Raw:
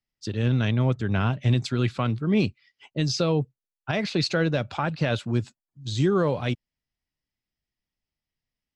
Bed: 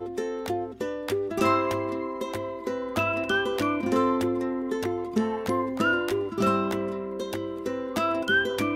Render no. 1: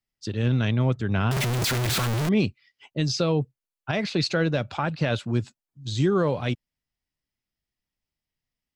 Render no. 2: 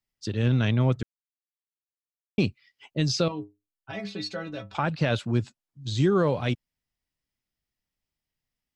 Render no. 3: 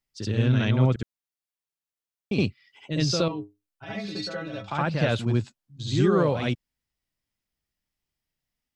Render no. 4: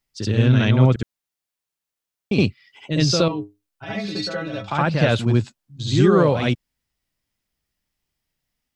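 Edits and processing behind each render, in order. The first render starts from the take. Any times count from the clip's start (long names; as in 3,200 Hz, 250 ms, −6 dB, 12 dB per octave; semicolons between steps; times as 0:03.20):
0:01.31–0:02.29: sign of each sample alone
0:01.03–0:02.38: silence; 0:03.28–0:04.75: stiff-string resonator 98 Hz, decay 0.26 s, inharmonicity 0.008; 0:05.31–0:06.03: high-shelf EQ 11,000 Hz −8.5 dB
backwards echo 69 ms −4.5 dB
level +6 dB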